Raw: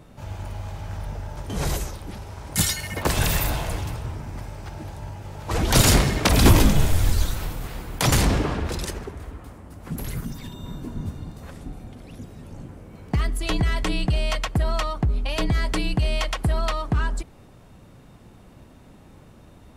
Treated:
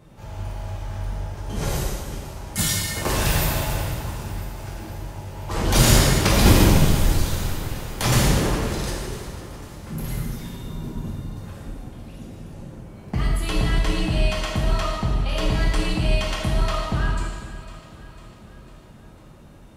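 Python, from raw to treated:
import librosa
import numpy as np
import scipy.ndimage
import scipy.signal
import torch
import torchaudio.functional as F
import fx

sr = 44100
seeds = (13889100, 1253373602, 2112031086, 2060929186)

y = fx.echo_feedback(x, sr, ms=500, feedback_pct=56, wet_db=-15.5)
y = fx.rev_gated(y, sr, seeds[0], gate_ms=470, shape='falling', drr_db=-4.0)
y = y * 10.0 ** (-4.5 / 20.0)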